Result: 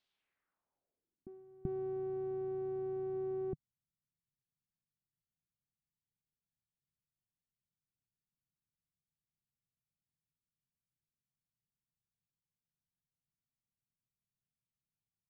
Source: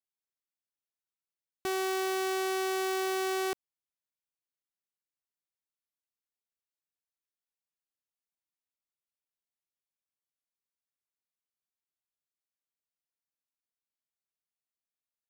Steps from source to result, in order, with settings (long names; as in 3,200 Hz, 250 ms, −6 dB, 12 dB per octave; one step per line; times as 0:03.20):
backwards echo 384 ms −20.5 dB
low-pass filter sweep 3,800 Hz → 150 Hz, 0:00.08–0:01.45
level +10 dB